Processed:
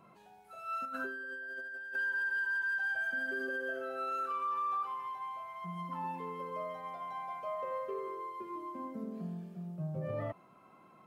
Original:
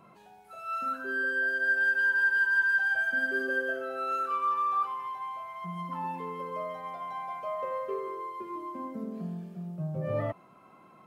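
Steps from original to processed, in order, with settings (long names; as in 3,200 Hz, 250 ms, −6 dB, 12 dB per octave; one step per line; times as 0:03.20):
brickwall limiter −25.5 dBFS, peak gain reduction 7.5 dB
0:00.85–0:01.96: compressor whose output falls as the input rises −38 dBFS, ratio −1
level −4 dB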